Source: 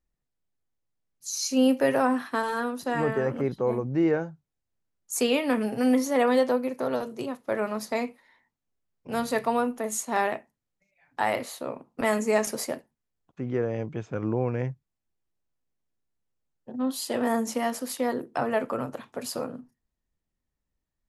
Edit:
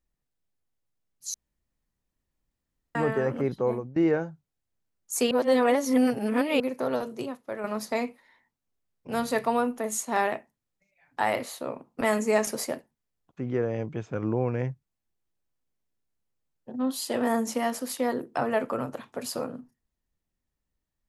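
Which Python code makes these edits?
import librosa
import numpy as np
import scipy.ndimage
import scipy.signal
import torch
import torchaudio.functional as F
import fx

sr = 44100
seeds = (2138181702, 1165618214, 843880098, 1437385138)

y = fx.edit(x, sr, fx.room_tone_fill(start_s=1.34, length_s=1.61),
    fx.fade_out_to(start_s=3.67, length_s=0.29, floor_db=-20.0),
    fx.reverse_span(start_s=5.31, length_s=1.29),
    fx.fade_out_to(start_s=7.2, length_s=0.44, curve='qua', floor_db=-7.5), tone=tone)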